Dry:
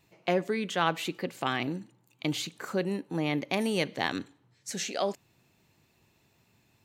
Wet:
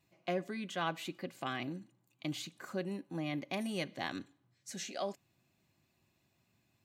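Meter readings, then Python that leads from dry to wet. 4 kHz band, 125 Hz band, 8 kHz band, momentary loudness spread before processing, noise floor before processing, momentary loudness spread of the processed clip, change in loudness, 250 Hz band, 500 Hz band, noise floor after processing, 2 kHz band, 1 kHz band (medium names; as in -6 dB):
-8.5 dB, -7.5 dB, -8.5 dB, 11 LU, -68 dBFS, 10 LU, -8.5 dB, -7.5 dB, -9.0 dB, -77 dBFS, -8.5 dB, -8.5 dB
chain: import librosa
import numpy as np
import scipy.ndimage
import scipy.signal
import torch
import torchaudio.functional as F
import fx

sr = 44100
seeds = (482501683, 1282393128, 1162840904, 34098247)

y = fx.notch_comb(x, sr, f0_hz=450.0)
y = y * 10.0 ** (-7.5 / 20.0)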